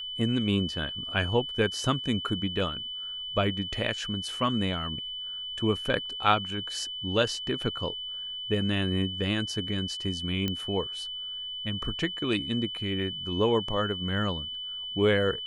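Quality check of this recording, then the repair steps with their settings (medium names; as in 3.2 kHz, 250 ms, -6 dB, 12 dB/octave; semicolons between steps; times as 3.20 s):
whine 3 kHz -34 dBFS
10.48 s: pop -15 dBFS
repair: de-click; band-stop 3 kHz, Q 30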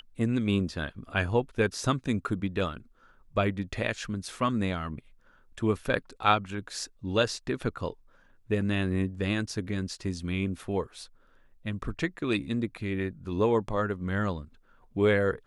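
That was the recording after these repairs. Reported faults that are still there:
nothing left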